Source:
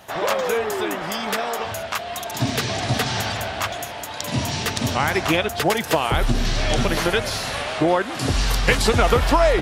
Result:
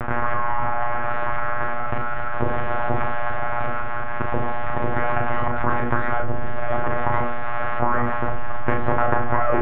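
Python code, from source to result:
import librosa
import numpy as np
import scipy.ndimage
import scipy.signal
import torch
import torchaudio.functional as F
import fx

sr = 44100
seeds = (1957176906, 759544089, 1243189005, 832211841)

y = np.abs(x)
y = fx.lpc_monotone(y, sr, seeds[0], pitch_hz=120.0, order=16)
y = scipy.signal.sosfilt(scipy.signal.butter(4, 1600.0, 'lowpass', fs=sr, output='sos'), y)
y = fx.peak_eq(y, sr, hz=370.0, db=2.0, octaves=0.77)
y = fx.hum_notches(y, sr, base_hz=60, count=8)
y = fx.doubler(y, sr, ms=37.0, db=-6)
y = fx.env_flatten(y, sr, amount_pct=70)
y = F.gain(torch.from_numpy(y), -2.5).numpy()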